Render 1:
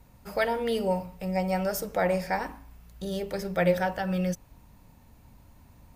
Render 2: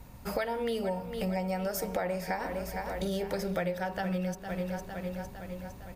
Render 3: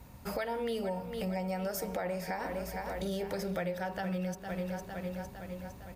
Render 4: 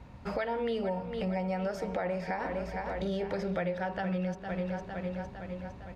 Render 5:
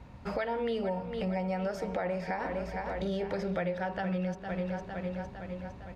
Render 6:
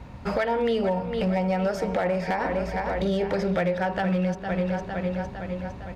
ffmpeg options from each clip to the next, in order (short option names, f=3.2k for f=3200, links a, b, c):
-af "aecho=1:1:457|914|1371|1828|2285|2742:0.2|0.118|0.0695|0.041|0.0242|0.0143,acompressor=threshold=-35dB:ratio=10,volume=6dB"
-filter_complex "[0:a]highpass=41,asplit=2[a][b];[b]alimiter=level_in=2.5dB:limit=-24dB:level=0:latency=1,volume=-2.5dB,volume=1dB[c];[a][c]amix=inputs=2:normalize=0,acrusher=bits=11:mix=0:aa=0.000001,volume=-8dB"
-af "lowpass=3.5k,volume=2.5dB"
-af anull
-af "volume=26dB,asoftclip=hard,volume=-26dB,volume=8dB"